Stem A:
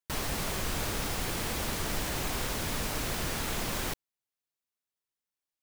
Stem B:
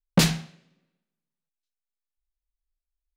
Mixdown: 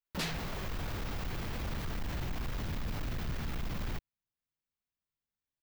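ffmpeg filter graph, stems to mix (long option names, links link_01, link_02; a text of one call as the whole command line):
ffmpeg -i stem1.wav -i stem2.wav -filter_complex "[0:a]asubboost=boost=3.5:cutoff=240,adelay=50,volume=-2dB[link_01];[1:a]highpass=frequency=470:poles=1,volume=0dB[link_02];[link_01][link_02]amix=inputs=2:normalize=0,equalizer=frequency=9600:width=0.67:gain=-14,asoftclip=type=tanh:threshold=-26.5dB,alimiter=level_in=6.5dB:limit=-24dB:level=0:latency=1,volume=-6.5dB" out.wav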